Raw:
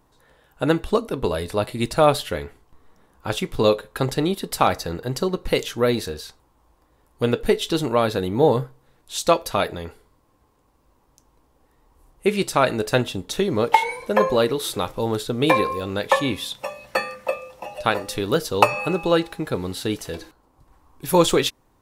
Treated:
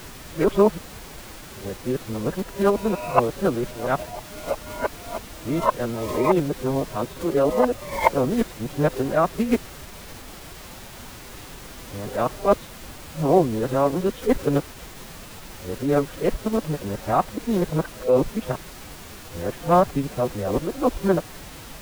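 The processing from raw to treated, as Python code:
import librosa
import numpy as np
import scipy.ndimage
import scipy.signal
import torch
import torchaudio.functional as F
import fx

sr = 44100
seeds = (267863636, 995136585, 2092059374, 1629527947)

y = np.flip(x).copy()
y = scipy.signal.sosfilt(scipy.signal.butter(2, 1200.0, 'lowpass', fs=sr, output='sos'), y)
y = fx.env_lowpass(y, sr, base_hz=800.0, full_db=-19.0)
y = fx.dmg_noise_colour(y, sr, seeds[0], colour='pink', level_db=-39.0)
y = fx.pitch_keep_formants(y, sr, semitones=3.0)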